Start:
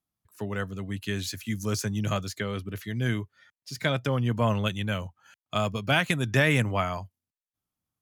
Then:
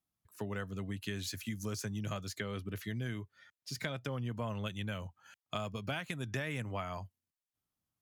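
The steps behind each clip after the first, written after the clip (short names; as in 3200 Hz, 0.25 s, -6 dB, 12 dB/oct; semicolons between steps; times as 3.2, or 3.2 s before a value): compressor 5:1, threshold -33 dBFS, peak gain reduction 14 dB; gain -2.5 dB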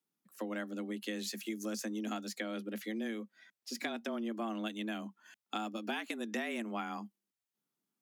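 frequency shift +110 Hz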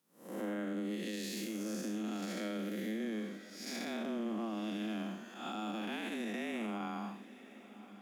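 time blur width 0.254 s; limiter -40.5 dBFS, peak gain reduction 10 dB; diffused feedback echo 1.066 s, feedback 51%, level -16 dB; gain +9 dB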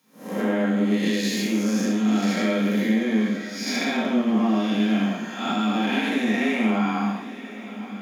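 in parallel at -4 dB: soft clip -39.5 dBFS, distortion -12 dB; on the sum: reverb RT60 0.50 s, pre-delay 3 ms, DRR -3.5 dB; gain +6 dB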